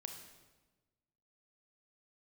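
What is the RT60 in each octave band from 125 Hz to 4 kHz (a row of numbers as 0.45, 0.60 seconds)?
1.6, 1.5, 1.3, 1.2, 1.0, 1.0 seconds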